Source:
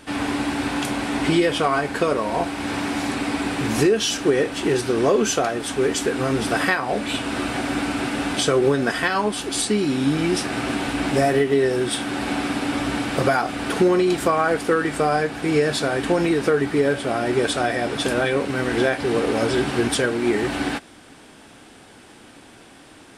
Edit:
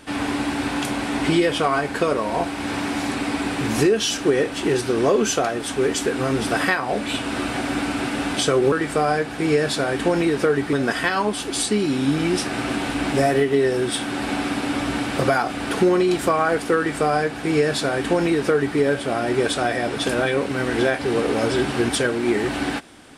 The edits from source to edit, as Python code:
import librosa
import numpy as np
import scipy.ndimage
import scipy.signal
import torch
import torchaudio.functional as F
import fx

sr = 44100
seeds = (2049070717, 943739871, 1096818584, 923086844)

y = fx.edit(x, sr, fx.duplicate(start_s=14.76, length_s=2.01, to_s=8.72), tone=tone)